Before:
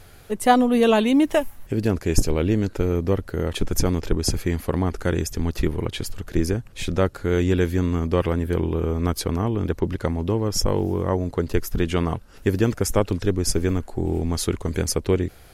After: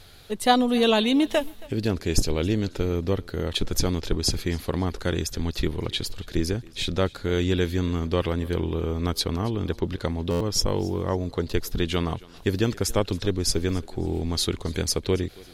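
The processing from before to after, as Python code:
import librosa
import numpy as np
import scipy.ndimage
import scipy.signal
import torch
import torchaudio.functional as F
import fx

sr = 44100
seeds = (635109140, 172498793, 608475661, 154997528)

p1 = fx.peak_eq(x, sr, hz=3900.0, db=12.0, octaves=0.77)
p2 = p1 + fx.echo_thinned(p1, sr, ms=274, feedback_pct=28, hz=180.0, wet_db=-22.0, dry=0)
p3 = fx.buffer_glitch(p2, sr, at_s=(10.3,), block=512, repeats=8)
y = F.gain(torch.from_numpy(p3), -3.5).numpy()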